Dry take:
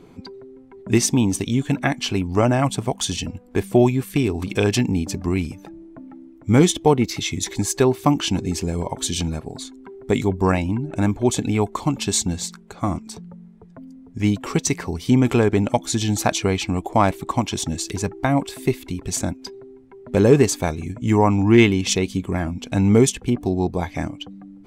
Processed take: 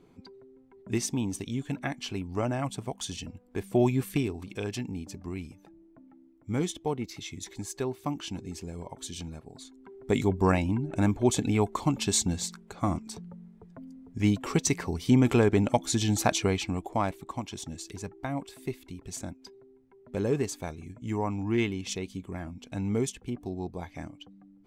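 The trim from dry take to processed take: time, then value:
3.60 s -12 dB
4.06 s -4 dB
4.43 s -15 dB
9.47 s -15 dB
10.22 s -5 dB
16.39 s -5 dB
17.28 s -14 dB

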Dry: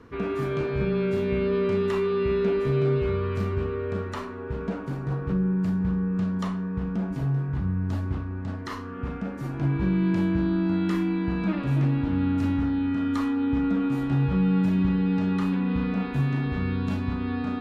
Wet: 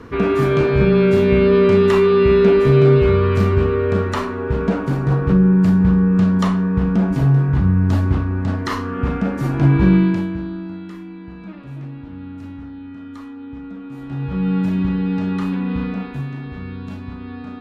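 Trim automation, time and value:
9.95 s +11.5 dB
10.28 s 0 dB
10.93 s -9 dB
13.85 s -9 dB
14.49 s +3.5 dB
15.83 s +3.5 dB
16.34 s -3.5 dB

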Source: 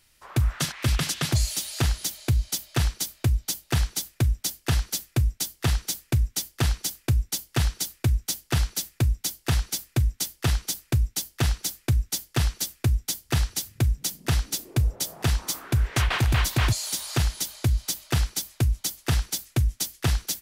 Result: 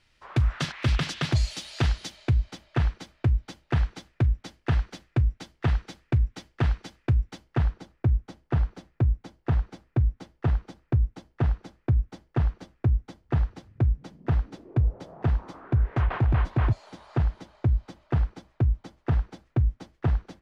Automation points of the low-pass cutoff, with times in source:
1.99 s 3.7 kHz
2.54 s 1.9 kHz
7.23 s 1.9 kHz
7.82 s 1.1 kHz

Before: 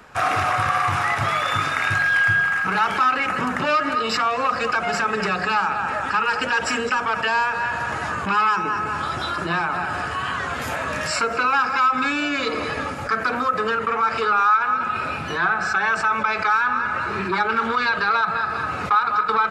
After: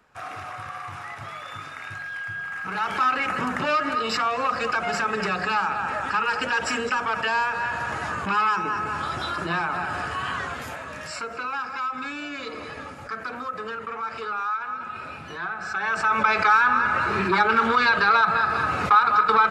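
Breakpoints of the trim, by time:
2.31 s -15 dB
3.04 s -3 dB
10.39 s -3 dB
10.85 s -10.5 dB
15.57 s -10.5 dB
16.24 s +1.5 dB

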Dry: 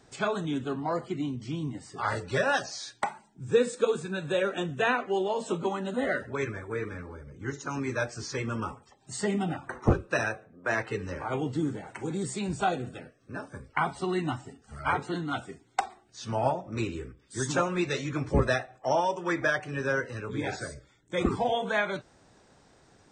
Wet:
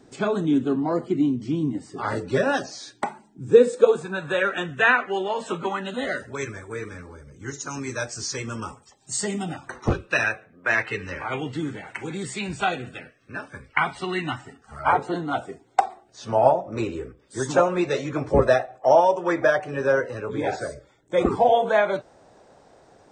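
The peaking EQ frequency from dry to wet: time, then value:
peaking EQ +11.5 dB 1.6 oct
3.44 s 290 Hz
4.46 s 1.7 kHz
5.76 s 1.7 kHz
6.19 s 7.1 kHz
9.49 s 7.1 kHz
10.25 s 2.3 kHz
14.28 s 2.3 kHz
14.99 s 610 Hz

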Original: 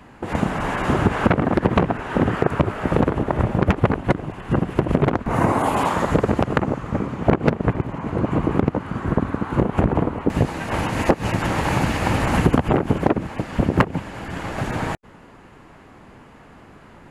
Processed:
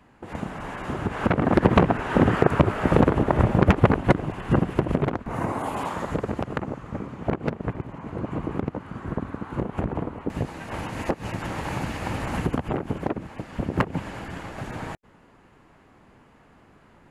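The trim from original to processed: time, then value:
1.01 s -10.5 dB
1.56 s +0.5 dB
4.47 s +0.5 dB
5.32 s -9 dB
13.66 s -9 dB
14.08 s -1 dB
14.52 s -9 dB

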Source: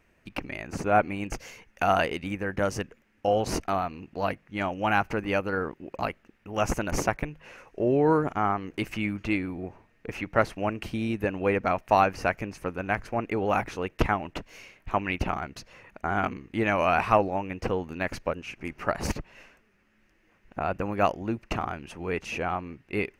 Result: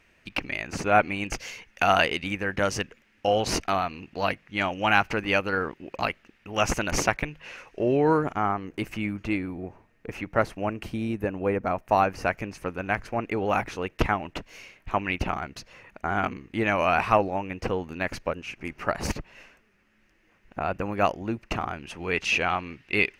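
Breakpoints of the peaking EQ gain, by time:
peaking EQ 3.5 kHz 2.3 oct
7.89 s +9 dB
8.62 s -2 dB
10.84 s -2 dB
11.59 s -8.5 dB
12.44 s +2.5 dB
21.73 s +2.5 dB
22.27 s +13 dB

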